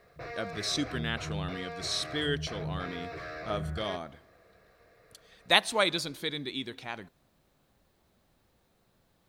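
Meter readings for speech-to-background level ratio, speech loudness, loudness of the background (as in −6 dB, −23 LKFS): 7.5 dB, −32.0 LKFS, −39.5 LKFS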